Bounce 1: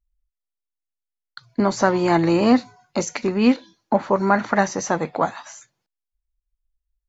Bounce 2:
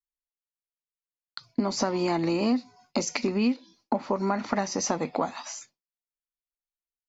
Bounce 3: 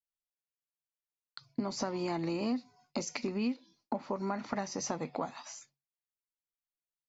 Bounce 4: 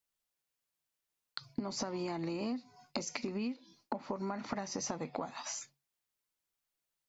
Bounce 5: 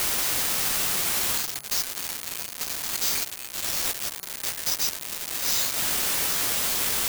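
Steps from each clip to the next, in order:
downward expander −49 dBFS; thirty-one-band graphic EQ 125 Hz −11 dB, 250 Hz +7 dB, 1,600 Hz −7 dB, 2,500 Hz +4 dB, 5,000 Hz +10 dB; downward compressor 6 to 1, threshold −23 dBFS, peak gain reduction 16.5 dB
parametric band 140 Hz +13 dB 0.2 octaves; level −8.5 dB
downward compressor 5 to 1, threshold −43 dBFS, peak gain reduction 13.5 dB; level +7.5 dB
spike at every zero crossing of −25 dBFS; brick-wall band-stop 150–1,500 Hz; bad sample-rate conversion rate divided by 4×, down none, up zero stuff

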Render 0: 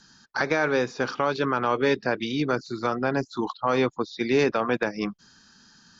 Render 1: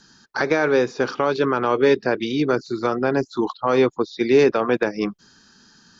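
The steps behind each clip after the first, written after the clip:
parametric band 390 Hz +6 dB 0.86 octaves
level +2 dB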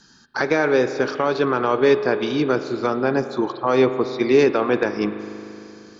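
spring reverb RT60 3.1 s, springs 38 ms, chirp 20 ms, DRR 10 dB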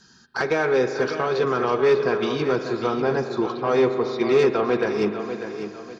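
soft clipping −10.5 dBFS, distortion −17 dB
notch comb filter 290 Hz
repeating echo 596 ms, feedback 38%, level −9.5 dB

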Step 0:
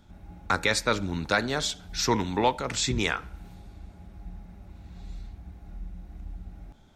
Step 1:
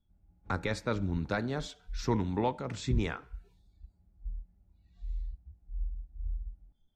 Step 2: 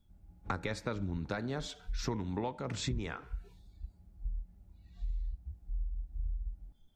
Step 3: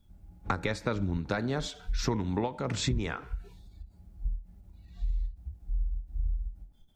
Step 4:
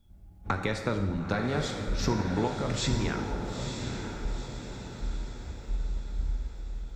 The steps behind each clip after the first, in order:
noise reduction from a noise print of the clip's start 21 dB; spectral tilt −3 dB per octave; level −9 dB
downward compressor 6 to 1, threshold −40 dBFS, peak gain reduction 16 dB; level +7 dB
every ending faded ahead of time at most 190 dB per second; level +6 dB
feedback delay with all-pass diffusion 923 ms, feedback 51%, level −6 dB; dense smooth reverb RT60 1.4 s, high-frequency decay 0.8×, DRR 5 dB

